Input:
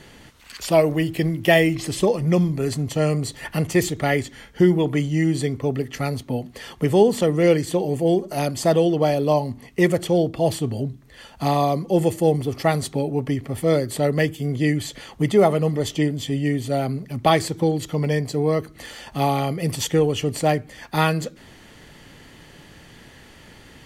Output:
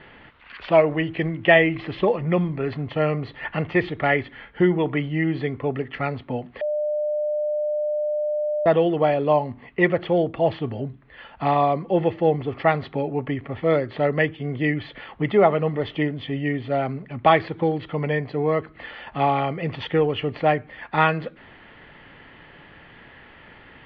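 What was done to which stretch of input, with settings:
6.61–8.66 bleep 600 Hz -21.5 dBFS
whole clip: Bessel low-pass 1800 Hz, order 8; tilt shelf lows -6.5 dB, about 680 Hz; gain +1.5 dB

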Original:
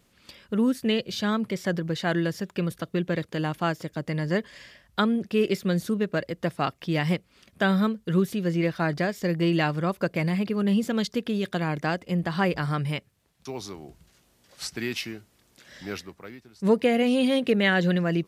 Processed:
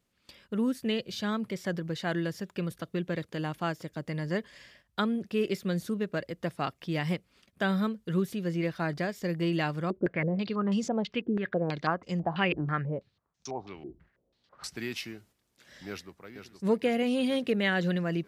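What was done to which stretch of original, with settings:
9.9–14.64 stepped low-pass 6.1 Hz 340–6200 Hz
15.88–16.3 echo throw 0.47 s, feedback 65%, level -8 dB
whole clip: gate -54 dBFS, range -8 dB; gain -5.5 dB

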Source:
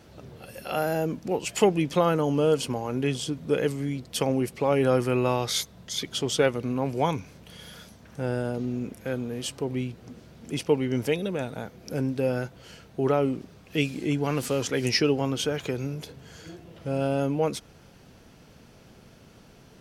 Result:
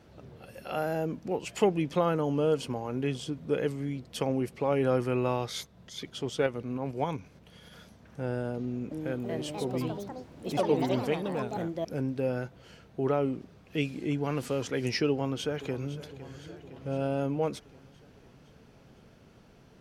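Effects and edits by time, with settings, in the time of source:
5.46–7.71 tremolo saw up 3.7 Hz -> 11 Hz, depth 45%
8.58–12.28 echoes that change speed 0.331 s, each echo +4 st, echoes 3
15.1–15.99 echo throw 0.51 s, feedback 65%, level -14.5 dB
whole clip: high shelf 4100 Hz -8 dB; gain -4 dB

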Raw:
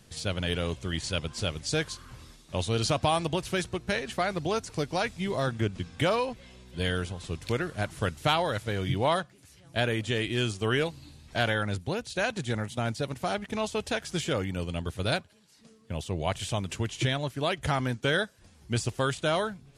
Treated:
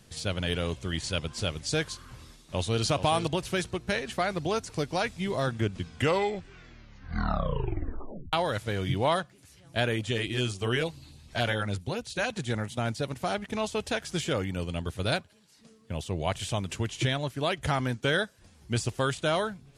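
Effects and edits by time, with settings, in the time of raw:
2.08–2.84 echo throw 0.43 s, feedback 10%, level -10 dB
5.81 tape stop 2.52 s
9.96–12.39 LFO notch sine 7 Hz 230–1900 Hz

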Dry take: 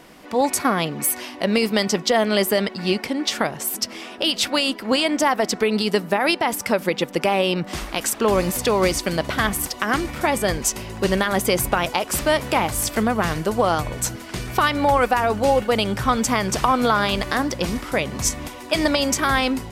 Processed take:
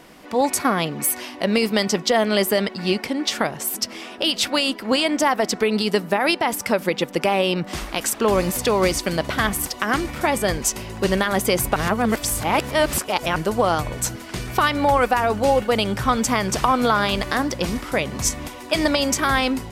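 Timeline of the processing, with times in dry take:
11.76–13.36 reverse

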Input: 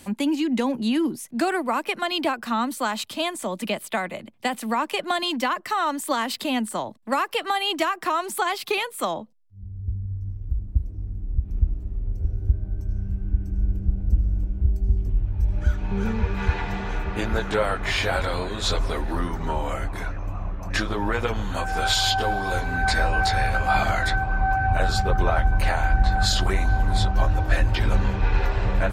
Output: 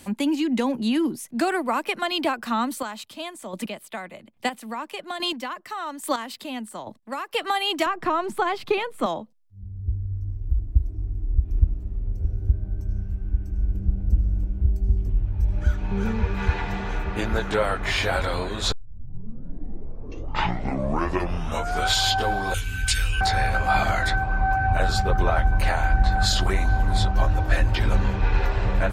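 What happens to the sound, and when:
2.7–7.34 chopper 1.2 Hz, depth 60%, duty 15%
7.86–9.06 RIAA curve playback
9.86–11.64 comb 2.9 ms, depth 63%
13.02–13.75 bell 170 Hz -6 dB 1.6 oct
18.72 tape start 3.21 s
22.54–23.21 EQ curve 100 Hz 0 dB, 190 Hz -12 dB, 460 Hz -15 dB, 680 Hz -30 dB, 1400 Hz -6 dB, 2000 Hz -6 dB, 2900 Hz +14 dB, 4100 Hz -1 dB, 6000 Hz +8 dB, 8800 Hz +11 dB

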